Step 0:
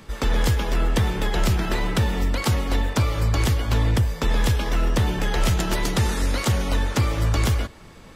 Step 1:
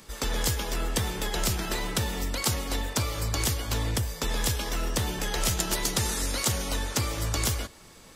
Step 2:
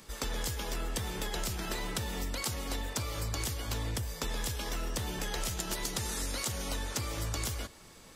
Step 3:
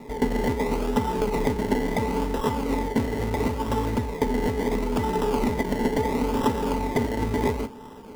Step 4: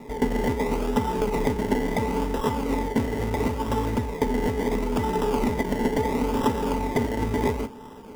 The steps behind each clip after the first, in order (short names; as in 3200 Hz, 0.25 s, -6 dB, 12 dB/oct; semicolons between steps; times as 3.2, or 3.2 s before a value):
tone controls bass -4 dB, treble +11 dB; gain -5.5 dB
compressor, threshold -28 dBFS, peak gain reduction 7.5 dB; gain -3 dB
decimation with a swept rate 28×, swing 60% 0.73 Hz; small resonant body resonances 250/420/880/2000 Hz, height 16 dB, ringing for 70 ms; gain +5 dB
notch 4200 Hz, Q 13